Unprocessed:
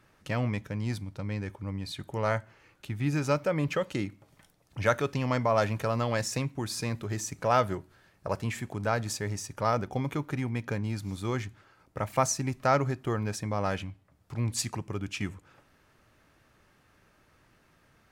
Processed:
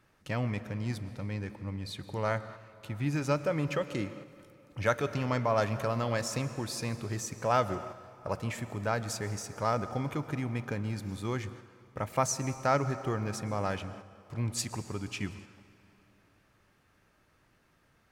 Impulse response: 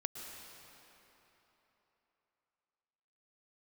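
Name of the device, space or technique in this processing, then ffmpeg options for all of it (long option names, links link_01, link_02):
keyed gated reverb: -filter_complex "[0:a]asplit=3[link_01][link_02][link_03];[1:a]atrim=start_sample=2205[link_04];[link_02][link_04]afir=irnorm=-1:irlink=0[link_05];[link_03]apad=whole_len=798987[link_06];[link_05][link_06]sidechaingate=range=-6dB:threshold=-50dB:ratio=16:detection=peak,volume=-4dB[link_07];[link_01][link_07]amix=inputs=2:normalize=0,volume=-6dB"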